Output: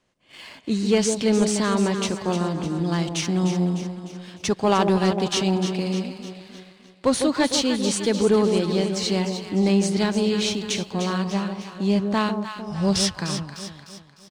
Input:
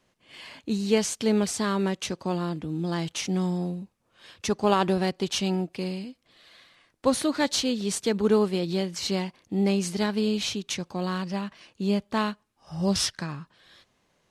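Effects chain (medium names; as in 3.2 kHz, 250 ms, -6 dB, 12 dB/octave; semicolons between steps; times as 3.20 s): echo whose repeats swap between lows and highs 151 ms, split 870 Hz, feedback 71%, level -6 dB; resampled via 22.05 kHz; waveshaping leveller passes 1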